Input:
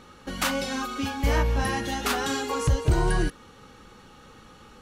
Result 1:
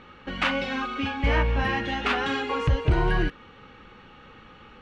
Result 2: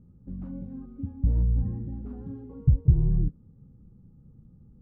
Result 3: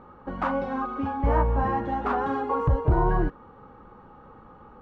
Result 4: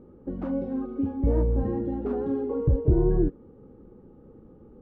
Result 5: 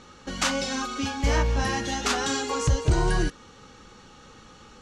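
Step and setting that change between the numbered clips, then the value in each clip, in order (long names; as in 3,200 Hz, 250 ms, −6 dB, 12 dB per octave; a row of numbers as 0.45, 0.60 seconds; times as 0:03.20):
low-pass with resonance, frequency: 2,600, 150, 1,000, 390, 6,700 Hertz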